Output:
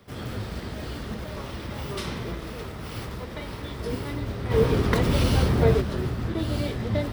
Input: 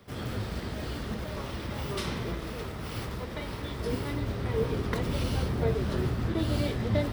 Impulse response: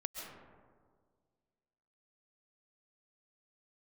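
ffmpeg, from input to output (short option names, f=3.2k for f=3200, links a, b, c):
-filter_complex "[0:a]asplit=3[a][b][c];[a]afade=t=out:st=4.5:d=0.02[d];[b]acontrast=85,afade=t=in:st=4.5:d=0.02,afade=t=out:st=5.8:d=0.02[e];[c]afade=t=in:st=5.8:d=0.02[f];[d][e][f]amix=inputs=3:normalize=0,volume=1dB"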